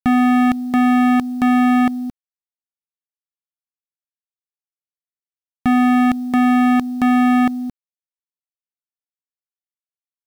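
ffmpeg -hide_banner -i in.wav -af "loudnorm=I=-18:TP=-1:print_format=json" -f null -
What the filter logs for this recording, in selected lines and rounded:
"input_i" : "-16.0",
"input_tp" : "-8.8",
"input_lra" : "10.6",
"input_thresh" : "-26.8",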